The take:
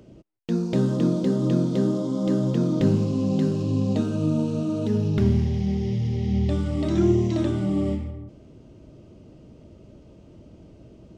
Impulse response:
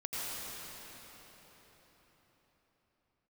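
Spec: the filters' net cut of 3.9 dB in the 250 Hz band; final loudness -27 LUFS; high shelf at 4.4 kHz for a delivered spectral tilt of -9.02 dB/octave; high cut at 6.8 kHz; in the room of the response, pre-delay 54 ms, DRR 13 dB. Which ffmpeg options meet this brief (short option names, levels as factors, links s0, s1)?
-filter_complex "[0:a]lowpass=6800,equalizer=f=250:t=o:g=-5.5,highshelf=f=4400:g=3.5,asplit=2[s0][s1];[1:a]atrim=start_sample=2205,adelay=54[s2];[s1][s2]afir=irnorm=-1:irlink=0,volume=0.133[s3];[s0][s3]amix=inputs=2:normalize=0,volume=0.891"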